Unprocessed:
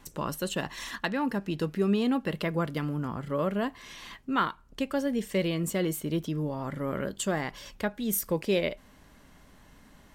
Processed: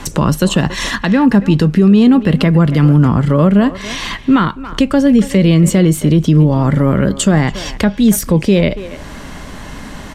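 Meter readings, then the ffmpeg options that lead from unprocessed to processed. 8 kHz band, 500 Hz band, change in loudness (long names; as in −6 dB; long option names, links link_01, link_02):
+15.0 dB, +14.0 dB, +18.5 dB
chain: -filter_complex "[0:a]lowpass=9500,acrossover=split=230[link_01][link_02];[link_02]acompressor=threshold=-49dB:ratio=2[link_03];[link_01][link_03]amix=inputs=2:normalize=0,asplit=2[link_04][link_05];[link_05]adelay=280,highpass=300,lowpass=3400,asoftclip=type=hard:threshold=-30.5dB,volume=-15dB[link_06];[link_04][link_06]amix=inputs=2:normalize=0,alimiter=level_in=27dB:limit=-1dB:release=50:level=0:latency=1,volume=-1dB"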